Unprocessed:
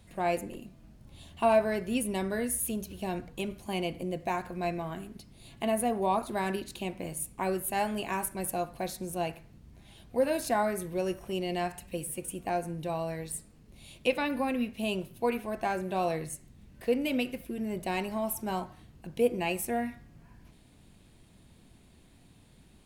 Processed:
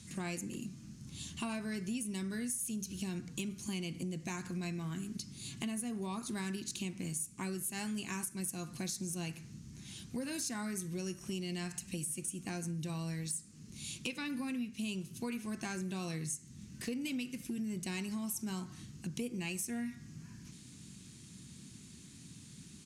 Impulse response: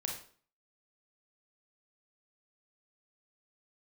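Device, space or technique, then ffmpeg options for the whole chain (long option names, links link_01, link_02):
AM radio: -af "highpass=170,lowpass=4200,firequalizer=gain_entry='entry(140,0);entry(610,-26);entry(1200,-12);entry(3600,-5);entry(6200,14)':delay=0.05:min_phase=1,acompressor=threshold=-49dB:ratio=5,asoftclip=type=tanh:threshold=-37.5dB,volume=12.5dB"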